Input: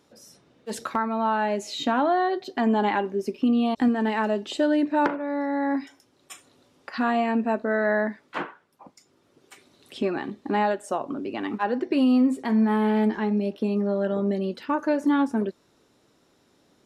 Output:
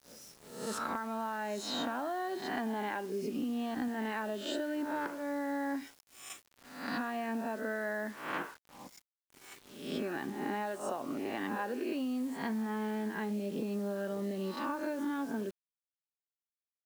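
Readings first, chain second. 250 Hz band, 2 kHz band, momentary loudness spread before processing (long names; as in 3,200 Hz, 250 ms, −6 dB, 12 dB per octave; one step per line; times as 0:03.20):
−12.5 dB, −8.5 dB, 9 LU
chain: peak hold with a rise ahead of every peak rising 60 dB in 0.66 s
dynamic equaliser 1,600 Hz, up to +4 dB, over −45 dBFS, Q 5.3
downward compressor 16 to 1, threshold −26 dBFS, peak gain reduction 11.5 dB
bit-depth reduction 8 bits, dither none
level −6 dB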